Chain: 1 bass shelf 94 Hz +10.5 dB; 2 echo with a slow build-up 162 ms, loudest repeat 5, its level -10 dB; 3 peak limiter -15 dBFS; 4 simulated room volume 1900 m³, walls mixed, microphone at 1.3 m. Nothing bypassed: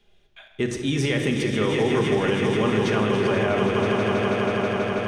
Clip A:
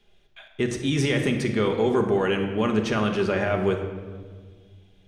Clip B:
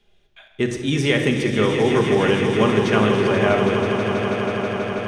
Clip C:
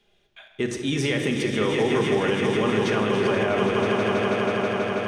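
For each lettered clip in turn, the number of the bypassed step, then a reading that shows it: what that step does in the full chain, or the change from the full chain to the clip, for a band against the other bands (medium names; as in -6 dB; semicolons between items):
2, loudness change -1.5 LU; 3, mean gain reduction 2.0 dB; 1, 125 Hz band -3.5 dB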